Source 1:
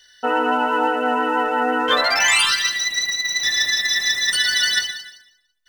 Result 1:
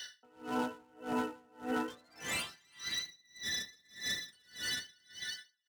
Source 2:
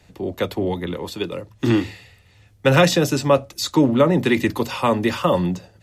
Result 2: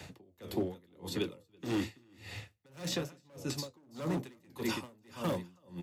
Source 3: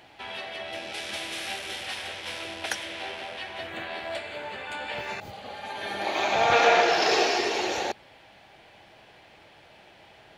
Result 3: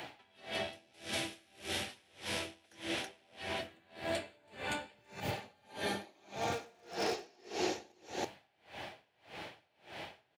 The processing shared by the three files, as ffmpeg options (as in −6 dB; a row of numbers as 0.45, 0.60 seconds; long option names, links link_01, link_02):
-filter_complex "[0:a]flanger=delay=5.6:depth=8.6:regen=73:speed=0.96:shape=triangular,aecho=1:1:328:0.355,volume=20dB,asoftclip=hard,volume=-20dB,areverse,acompressor=threshold=-34dB:ratio=6,areverse,highpass=79,acrossover=split=380|5500[link_01][link_02][link_03];[link_01]acompressor=threshold=-45dB:ratio=4[link_04];[link_02]acompressor=threshold=-50dB:ratio=4[link_05];[link_03]acompressor=threshold=-56dB:ratio=4[link_06];[link_04][link_05][link_06]amix=inputs=3:normalize=0,aeval=exprs='val(0)*pow(10,-33*(0.5-0.5*cos(2*PI*1.7*n/s))/20)':channel_layout=same,volume=13dB"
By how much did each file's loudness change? −21.0, −18.5, −13.0 LU